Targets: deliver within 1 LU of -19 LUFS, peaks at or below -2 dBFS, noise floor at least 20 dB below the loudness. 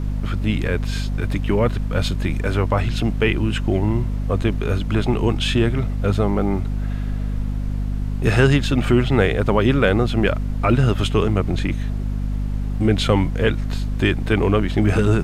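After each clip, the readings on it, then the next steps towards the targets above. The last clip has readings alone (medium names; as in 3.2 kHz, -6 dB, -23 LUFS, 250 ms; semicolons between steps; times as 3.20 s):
hum 50 Hz; highest harmonic 250 Hz; hum level -20 dBFS; noise floor -24 dBFS; noise floor target -41 dBFS; loudness -20.5 LUFS; peak level -2.5 dBFS; loudness target -19.0 LUFS
-> hum notches 50/100/150/200/250 Hz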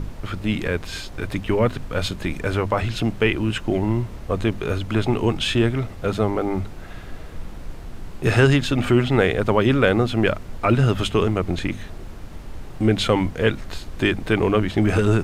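hum not found; noise floor -36 dBFS; noise floor target -42 dBFS
-> noise print and reduce 6 dB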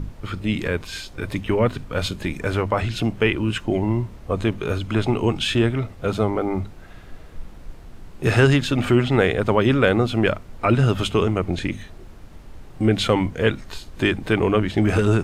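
noise floor -42 dBFS; loudness -21.5 LUFS; peak level -3.0 dBFS; loudness target -19.0 LUFS
-> trim +2.5 dB; peak limiter -2 dBFS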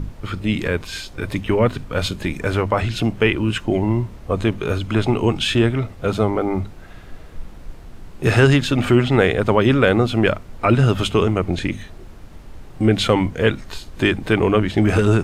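loudness -19.0 LUFS; peak level -2.0 dBFS; noise floor -40 dBFS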